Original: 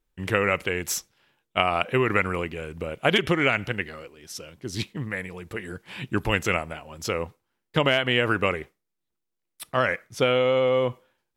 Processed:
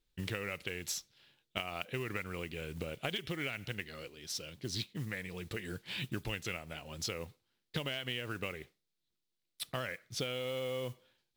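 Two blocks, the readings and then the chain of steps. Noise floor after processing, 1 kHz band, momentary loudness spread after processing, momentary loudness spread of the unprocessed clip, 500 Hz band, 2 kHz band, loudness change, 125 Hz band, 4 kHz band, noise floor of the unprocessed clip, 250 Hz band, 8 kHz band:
−85 dBFS, −18.5 dB, 6 LU, 15 LU, −16.5 dB, −15.0 dB, −14.5 dB, −11.0 dB, −10.0 dB, −81 dBFS, −14.0 dB, −8.0 dB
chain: octave-band graphic EQ 125/1,000/4,000 Hz +4/−5/+11 dB
downward compressor 6 to 1, threshold −31 dBFS, peak gain reduction 17.5 dB
noise that follows the level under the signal 20 dB
level −4.5 dB

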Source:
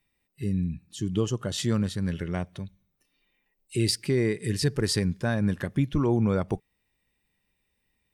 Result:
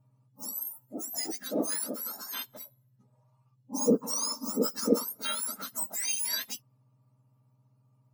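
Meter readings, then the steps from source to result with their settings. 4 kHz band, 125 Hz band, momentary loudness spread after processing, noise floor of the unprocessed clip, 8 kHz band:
−2.5 dB, −22.0 dB, 12 LU, −77 dBFS, +6.0 dB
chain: frequency axis turned over on the octave scale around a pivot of 1,500 Hz
notch comb filter 370 Hz

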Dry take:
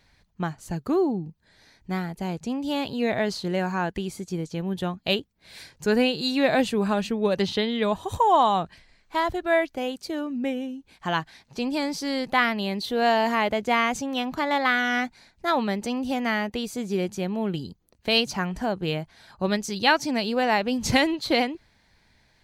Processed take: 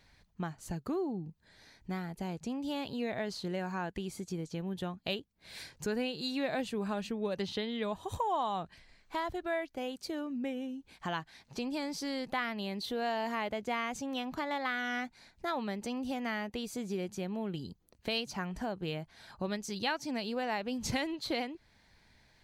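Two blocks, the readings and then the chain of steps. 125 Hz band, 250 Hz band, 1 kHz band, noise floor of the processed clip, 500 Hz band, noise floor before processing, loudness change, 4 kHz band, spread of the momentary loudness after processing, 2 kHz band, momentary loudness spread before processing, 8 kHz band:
−9.5 dB, −10.0 dB, −12.0 dB, −67 dBFS, −11.5 dB, −64 dBFS, −11.0 dB, −11.0 dB, 7 LU, −12.0 dB, 11 LU, −8.5 dB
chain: downward compressor 2 to 1, threshold −36 dBFS, peak gain reduction 12 dB
level −2.5 dB

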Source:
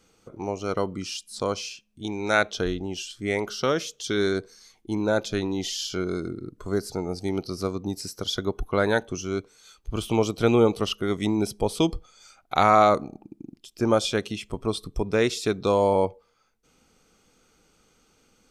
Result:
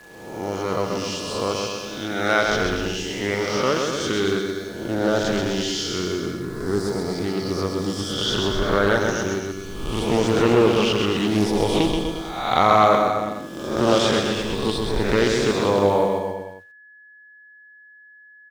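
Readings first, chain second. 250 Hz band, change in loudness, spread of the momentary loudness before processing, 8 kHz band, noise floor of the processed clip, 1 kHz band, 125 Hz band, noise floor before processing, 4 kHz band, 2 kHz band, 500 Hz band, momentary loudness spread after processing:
+4.5 dB, +4.0 dB, 13 LU, +4.5 dB, −49 dBFS, +4.0 dB, +4.0 dB, −65 dBFS, +6.5 dB, +5.5 dB, +4.0 dB, 11 LU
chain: peak hold with a rise ahead of every peak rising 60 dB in 0.97 s
low-pass filter 8,100 Hz 12 dB per octave
bit reduction 8 bits
bouncing-ball delay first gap 130 ms, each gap 0.9×, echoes 5
steady tone 1,700 Hz −46 dBFS
highs frequency-modulated by the lows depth 0.26 ms

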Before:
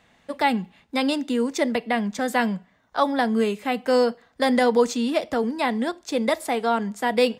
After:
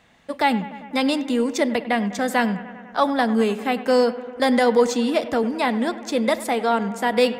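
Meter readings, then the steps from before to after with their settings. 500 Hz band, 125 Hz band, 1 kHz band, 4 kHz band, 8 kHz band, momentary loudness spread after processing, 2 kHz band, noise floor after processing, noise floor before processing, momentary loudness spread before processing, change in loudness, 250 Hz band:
+2.0 dB, can't be measured, +2.0 dB, +2.0 dB, +2.0 dB, 6 LU, +2.0 dB, −42 dBFS, −62 dBFS, 6 LU, +2.0 dB, +2.0 dB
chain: in parallel at −10.5 dB: soft clipping −16.5 dBFS, distortion −15 dB
on the sum: bucket-brigade delay 99 ms, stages 2,048, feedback 74%, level −16 dB

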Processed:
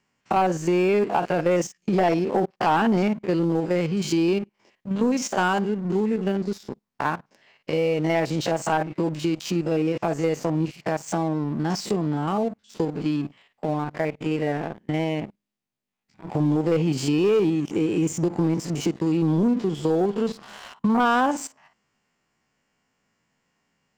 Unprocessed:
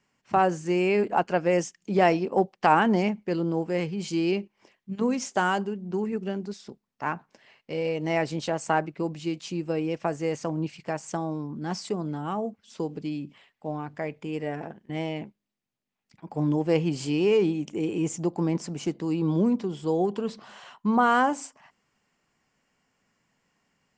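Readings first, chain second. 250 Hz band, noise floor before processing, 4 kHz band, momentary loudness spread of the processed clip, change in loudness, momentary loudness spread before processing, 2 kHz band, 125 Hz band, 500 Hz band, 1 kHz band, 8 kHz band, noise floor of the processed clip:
+4.5 dB, −79 dBFS, +3.5 dB, 8 LU, +3.0 dB, 13 LU, +1.0 dB, +5.0 dB, +3.0 dB, +1.5 dB, +4.5 dB, −75 dBFS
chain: spectrum averaged block by block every 50 ms
leveller curve on the samples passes 2
downward compressor 2 to 1, threshold −30 dBFS, peak gain reduction 9.5 dB
level +5 dB

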